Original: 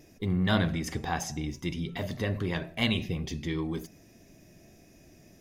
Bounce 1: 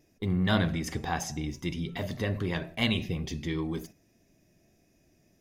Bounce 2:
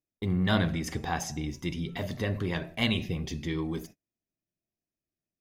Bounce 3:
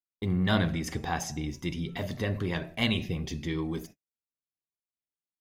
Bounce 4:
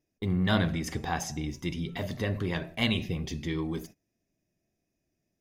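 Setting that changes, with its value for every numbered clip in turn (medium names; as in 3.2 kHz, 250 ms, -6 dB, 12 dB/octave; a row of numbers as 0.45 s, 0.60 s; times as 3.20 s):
gate, range: -10 dB, -39 dB, -56 dB, -25 dB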